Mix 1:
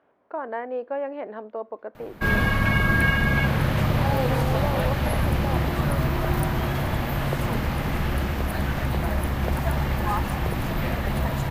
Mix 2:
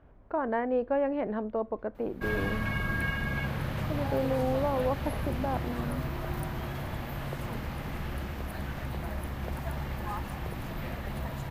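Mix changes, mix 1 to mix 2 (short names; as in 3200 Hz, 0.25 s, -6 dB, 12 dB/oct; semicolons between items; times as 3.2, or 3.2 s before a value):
speech: remove HPF 380 Hz 12 dB/oct; background -10.5 dB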